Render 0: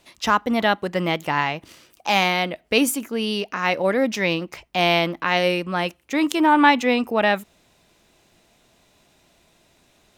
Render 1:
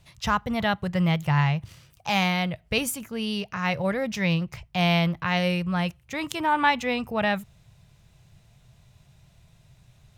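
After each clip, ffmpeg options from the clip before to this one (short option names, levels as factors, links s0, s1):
-af "lowshelf=f=190:t=q:w=3:g=14,volume=0.562"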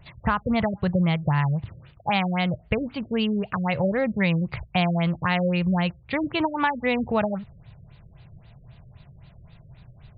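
-af "acompressor=threshold=0.0501:ratio=12,afftfilt=real='re*lt(b*sr/1024,580*pow(4900/580,0.5+0.5*sin(2*PI*3.8*pts/sr)))':imag='im*lt(b*sr/1024,580*pow(4900/580,0.5+0.5*sin(2*PI*3.8*pts/sr)))':win_size=1024:overlap=0.75,volume=2.37"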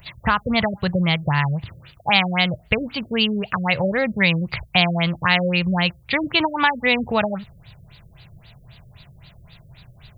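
-af "crystalizer=i=7:c=0,volume=1.12"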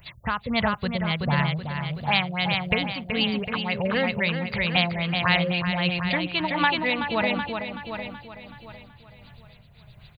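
-filter_complex "[0:a]asplit=2[s0][s1];[s1]aecho=0:1:377|754|1131|1508|1885|2262|2639:0.596|0.316|0.167|0.0887|0.047|0.0249|0.0132[s2];[s0][s2]amix=inputs=2:normalize=0,tremolo=f=1.5:d=0.39,volume=0.631"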